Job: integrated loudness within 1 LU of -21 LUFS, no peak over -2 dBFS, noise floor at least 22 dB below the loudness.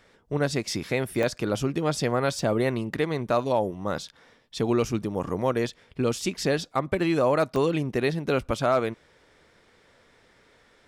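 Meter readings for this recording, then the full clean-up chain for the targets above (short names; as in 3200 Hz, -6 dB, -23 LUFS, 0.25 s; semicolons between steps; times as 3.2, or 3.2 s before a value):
dropouts 7; longest dropout 1.3 ms; loudness -26.5 LUFS; peak -10.5 dBFS; loudness target -21.0 LUFS
-> interpolate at 0.71/1.23/2.39/4.54/5.69/6.99/7.56, 1.3 ms; gain +5.5 dB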